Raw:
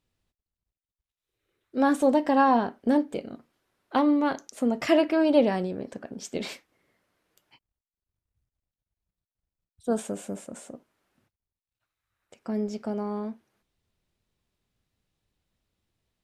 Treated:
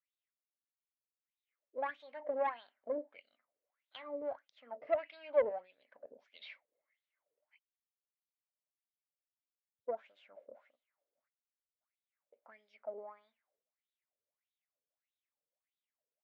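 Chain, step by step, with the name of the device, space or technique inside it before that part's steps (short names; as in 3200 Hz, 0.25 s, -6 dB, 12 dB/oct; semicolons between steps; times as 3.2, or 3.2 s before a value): wah-wah guitar rig (wah 1.6 Hz 430–3800 Hz, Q 6.4; tube stage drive 22 dB, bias 0.55; speaker cabinet 100–4500 Hz, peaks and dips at 190 Hz -9 dB, 370 Hz -8 dB, 590 Hz +9 dB, 2100 Hz +8 dB); gain -4.5 dB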